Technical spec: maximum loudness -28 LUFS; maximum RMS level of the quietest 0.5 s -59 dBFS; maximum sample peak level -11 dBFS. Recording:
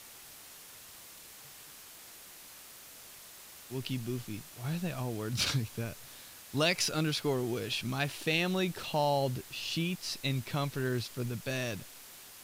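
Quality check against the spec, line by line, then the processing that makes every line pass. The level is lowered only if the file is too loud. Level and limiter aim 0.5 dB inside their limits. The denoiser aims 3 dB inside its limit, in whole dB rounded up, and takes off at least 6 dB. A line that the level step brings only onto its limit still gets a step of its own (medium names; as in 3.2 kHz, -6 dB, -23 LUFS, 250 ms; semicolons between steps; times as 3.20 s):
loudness -33.5 LUFS: pass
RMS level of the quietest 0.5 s -51 dBFS: fail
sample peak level -13.5 dBFS: pass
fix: noise reduction 11 dB, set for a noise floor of -51 dBFS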